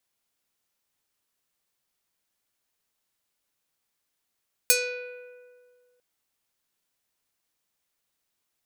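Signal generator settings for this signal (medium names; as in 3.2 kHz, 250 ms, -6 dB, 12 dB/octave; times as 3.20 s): plucked string B4, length 1.30 s, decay 1.96 s, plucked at 0.49, medium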